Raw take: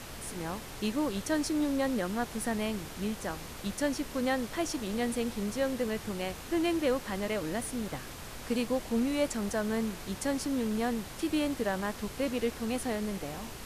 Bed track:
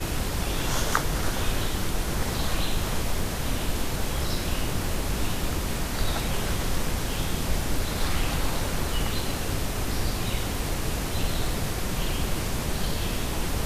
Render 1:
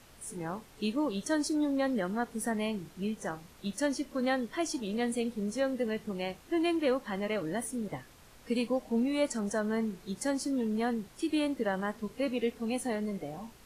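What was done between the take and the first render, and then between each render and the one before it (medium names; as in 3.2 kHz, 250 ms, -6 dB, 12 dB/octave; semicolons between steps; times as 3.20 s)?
noise print and reduce 13 dB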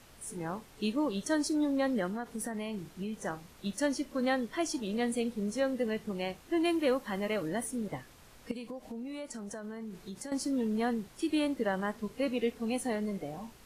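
2.07–3.14 s: compression 10:1, threshold -32 dBFS; 6.65–7.48 s: treble shelf 10 kHz +8 dB; 8.51–10.32 s: compression, threshold -38 dBFS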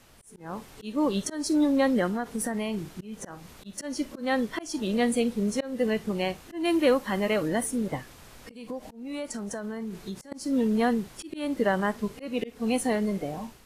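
level rider gain up to 7 dB; slow attack 239 ms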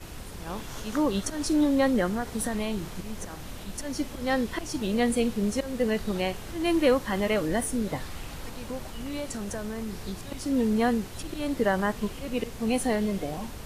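add bed track -13 dB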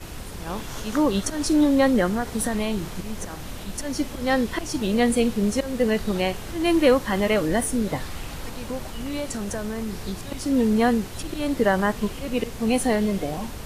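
trim +4.5 dB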